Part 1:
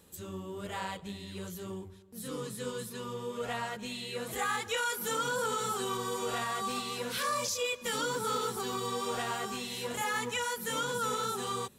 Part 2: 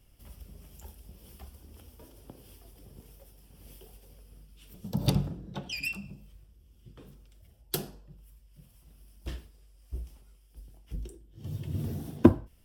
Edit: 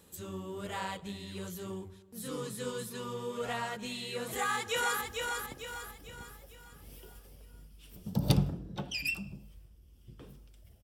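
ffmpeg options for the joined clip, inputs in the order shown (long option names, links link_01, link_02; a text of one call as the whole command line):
ffmpeg -i cue0.wav -i cue1.wav -filter_complex "[0:a]apad=whole_dur=10.83,atrim=end=10.83,atrim=end=5.012[link_01];[1:a]atrim=start=1.788:end=7.61[link_02];[link_01][link_02]acrossfade=duration=0.004:curve1=hsin:curve2=hsin,asplit=2[link_03][link_04];[link_04]afade=type=in:start_time=4.3:duration=0.01,afade=type=out:start_time=5.01:duration=0.01,aecho=0:1:450|900|1350|1800|2250|2700:0.630957|0.283931|0.127769|0.057496|0.0258732|0.0116429[link_05];[link_03][link_05]amix=inputs=2:normalize=0" out.wav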